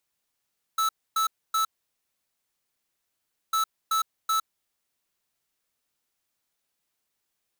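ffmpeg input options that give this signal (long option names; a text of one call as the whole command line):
ffmpeg -f lavfi -i "aevalsrc='0.0631*(2*lt(mod(1310*t,1),0.5)-1)*clip(min(mod(mod(t,2.75),0.38),0.11-mod(mod(t,2.75),0.38))/0.005,0,1)*lt(mod(t,2.75),1.14)':duration=5.5:sample_rate=44100" out.wav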